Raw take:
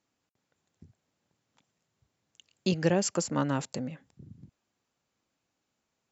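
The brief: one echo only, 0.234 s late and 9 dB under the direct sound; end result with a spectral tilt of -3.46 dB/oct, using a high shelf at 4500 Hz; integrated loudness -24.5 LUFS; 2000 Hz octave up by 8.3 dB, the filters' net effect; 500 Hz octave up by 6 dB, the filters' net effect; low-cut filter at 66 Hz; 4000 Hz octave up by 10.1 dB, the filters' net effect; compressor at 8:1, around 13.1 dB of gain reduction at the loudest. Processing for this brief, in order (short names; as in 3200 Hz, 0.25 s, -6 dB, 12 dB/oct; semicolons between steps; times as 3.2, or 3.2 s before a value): HPF 66 Hz; bell 500 Hz +6.5 dB; bell 2000 Hz +7.5 dB; bell 4000 Hz +6 dB; high shelf 4500 Hz +8.5 dB; compressor 8:1, threshold -28 dBFS; echo 0.234 s -9 dB; gain +9 dB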